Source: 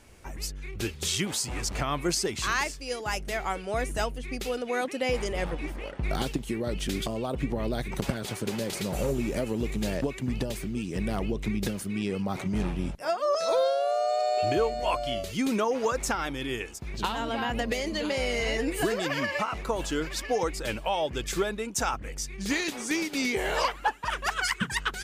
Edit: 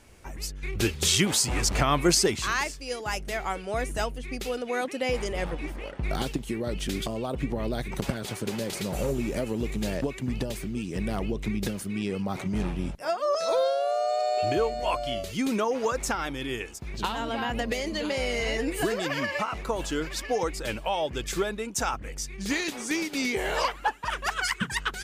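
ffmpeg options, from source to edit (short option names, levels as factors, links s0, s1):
-filter_complex "[0:a]asplit=3[s0][s1][s2];[s0]atrim=end=0.632[s3];[s1]atrim=start=0.628:end=2.362,asetpts=PTS-STARTPTS,volume=2[s4];[s2]atrim=start=2.358[s5];[s3][s4]acrossfade=d=0.004:c1=hsin:c2=hsin[s6];[s6][s5]acrossfade=d=0.004:c1=hsin:c2=hsin"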